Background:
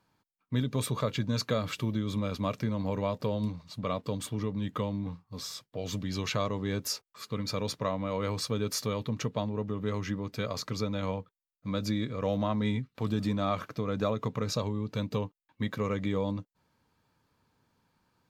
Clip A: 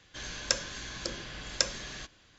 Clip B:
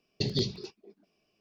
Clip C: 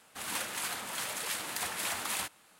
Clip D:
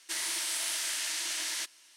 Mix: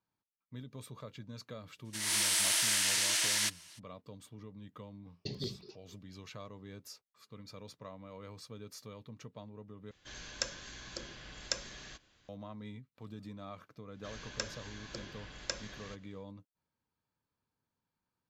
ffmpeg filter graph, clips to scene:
ffmpeg -i bed.wav -i cue0.wav -i cue1.wav -i cue2.wav -i cue3.wav -filter_complex "[1:a]asplit=2[link_01][link_02];[0:a]volume=-17dB[link_03];[4:a]dynaudnorm=framelen=150:gausssize=3:maxgain=12.5dB[link_04];[link_02]highshelf=frequency=4700:gain=-6.5[link_05];[link_03]asplit=2[link_06][link_07];[link_06]atrim=end=9.914[link_08];[link_01]atrim=end=2.38,asetpts=PTS-STARTPTS,volume=-7.5dB[link_09];[link_07]atrim=start=12.286[link_10];[link_04]atrim=end=1.96,asetpts=PTS-STARTPTS,volume=-9dB,afade=type=in:duration=0.02,afade=type=out:start_time=1.94:duration=0.02,adelay=1840[link_11];[2:a]atrim=end=1.4,asetpts=PTS-STARTPTS,volume=-10.5dB,afade=type=in:duration=0.004:curve=hsin,afade=type=out:start_time=1.396:duration=0.004:curve=hsin,adelay=222705S[link_12];[link_05]atrim=end=2.38,asetpts=PTS-STARTPTS,volume=-7dB,afade=type=in:duration=0.1,afade=type=out:start_time=2.28:duration=0.1,adelay=13890[link_13];[link_08][link_09]acrossfade=duration=0.004:curve1=hsin:curve2=hsin[link_14];[link_14][link_10]acrossfade=duration=0.004:curve1=hsin:curve2=hsin[link_15];[link_15][link_11][link_12][link_13]amix=inputs=4:normalize=0" out.wav

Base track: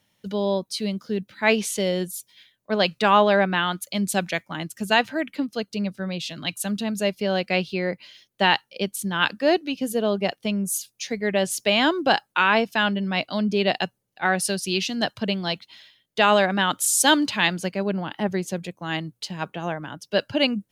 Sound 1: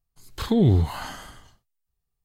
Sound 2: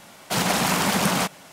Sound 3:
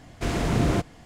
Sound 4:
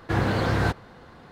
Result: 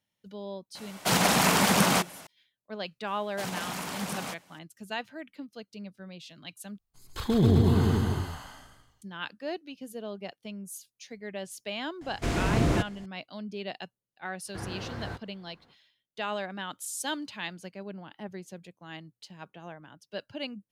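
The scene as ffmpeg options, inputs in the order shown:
ffmpeg -i bed.wav -i cue0.wav -i cue1.wav -i cue2.wav -i cue3.wav -filter_complex "[2:a]asplit=2[link_01][link_02];[0:a]volume=-15.5dB[link_03];[1:a]aecho=1:1:140|266|379.4|481.5|573.3|656|730.4:0.794|0.631|0.501|0.398|0.316|0.251|0.2[link_04];[link_03]asplit=2[link_05][link_06];[link_05]atrim=end=6.784[link_07];[link_04]atrim=end=2.24,asetpts=PTS-STARTPTS,volume=-5dB[link_08];[link_06]atrim=start=9.016[link_09];[link_01]atrim=end=1.52,asetpts=PTS-STARTPTS,volume=-1dB,afade=type=in:duration=0.004:curve=hsin,afade=type=out:start_time=1.516:duration=0.004:curve=hsin,adelay=750[link_10];[link_02]atrim=end=1.52,asetpts=PTS-STARTPTS,volume=-14dB,afade=type=in:duration=0.004:curve=hsin,afade=type=out:start_time=1.516:duration=0.004:curve=hsin,adelay=3070[link_11];[3:a]atrim=end=1.05,asetpts=PTS-STARTPTS,volume=-2dB,afade=type=in:duration=0.004:curve=hsin,afade=type=out:start_time=1.046:duration=0.004:curve=hsin,adelay=12010[link_12];[4:a]atrim=end=1.31,asetpts=PTS-STARTPTS,volume=-15dB,afade=type=in:duration=0.05,afade=type=out:start_time=1.26:duration=0.05,adelay=14450[link_13];[link_07][link_08]acrossfade=duration=0.004:curve1=hsin:curve2=hsin[link_14];[link_14][link_09]acrossfade=duration=0.004:curve1=hsin:curve2=hsin[link_15];[link_15][link_10][link_11][link_12][link_13]amix=inputs=5:normalize=0" out.wav

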